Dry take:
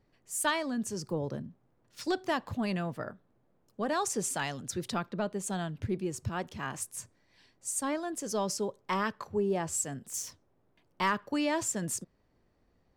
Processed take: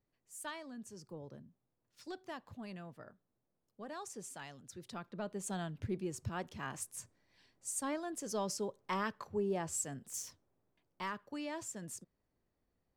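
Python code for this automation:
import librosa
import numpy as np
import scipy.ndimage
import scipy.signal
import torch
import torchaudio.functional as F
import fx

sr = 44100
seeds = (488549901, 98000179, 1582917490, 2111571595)

y = fx.gain(x, sr, db=fx.line((4.79, -15.0), (5.44, -5.5), (10.13, -5.5), (11.09, -12.0)))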